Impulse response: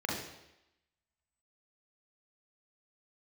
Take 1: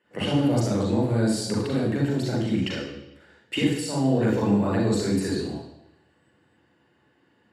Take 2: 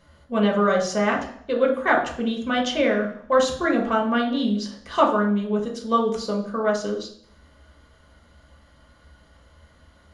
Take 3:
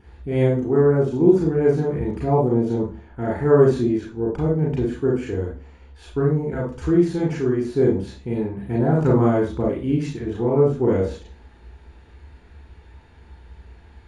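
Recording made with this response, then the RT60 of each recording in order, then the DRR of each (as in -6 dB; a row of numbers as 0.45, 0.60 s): 1; 0.90, 0.60, 0.40 s; -3.0, -0.5, -3.0 dB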